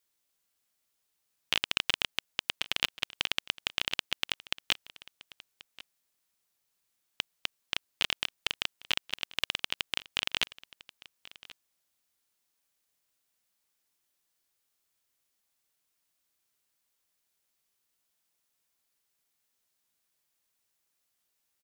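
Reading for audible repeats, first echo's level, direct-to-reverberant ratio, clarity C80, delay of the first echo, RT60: 1, -20.0 dB, none, none, 1.084 s, none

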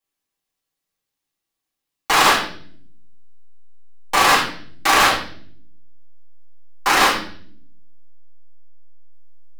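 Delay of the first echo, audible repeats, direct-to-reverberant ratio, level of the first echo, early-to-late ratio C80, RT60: none, none, -8.5 dB, none, 10.0 dB, 0.55 s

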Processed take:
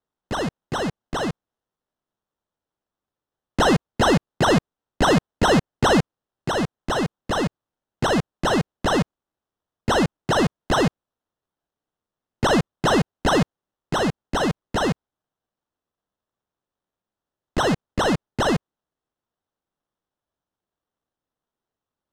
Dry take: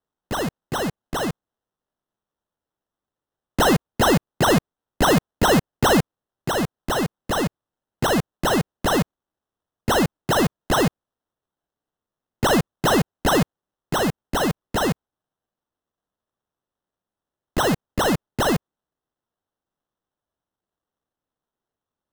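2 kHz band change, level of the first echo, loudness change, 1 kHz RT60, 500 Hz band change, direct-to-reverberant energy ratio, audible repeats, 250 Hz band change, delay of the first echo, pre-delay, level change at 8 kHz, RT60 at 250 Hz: 0.0 dB, none, -0.5 dB, none, 0.0 dB, none, none, 0.0 dB, none, none, -4.0 dB, none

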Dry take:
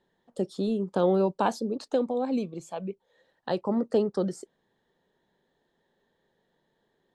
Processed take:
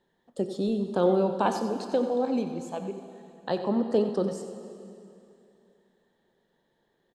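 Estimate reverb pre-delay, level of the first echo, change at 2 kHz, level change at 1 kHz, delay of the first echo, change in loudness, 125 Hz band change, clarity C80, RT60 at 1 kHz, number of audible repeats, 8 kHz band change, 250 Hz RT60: 6 ms, -12.0 dB, +0.5 dB, +1.0 dB, 92 ms, +0.5 dB, 0.0 dB, 7.5 dB, 2.7 s, 1, +1.0 dB, 2.8 s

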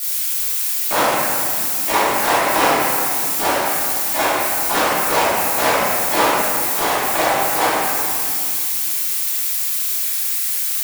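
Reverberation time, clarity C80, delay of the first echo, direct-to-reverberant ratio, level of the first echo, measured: 2.3 s, -1.5 dB, none, -14.0 dB, none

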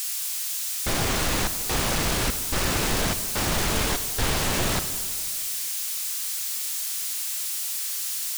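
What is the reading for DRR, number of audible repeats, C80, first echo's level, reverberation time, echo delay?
10.0 dB, none, 12.0 dB, none, 1.9 s, none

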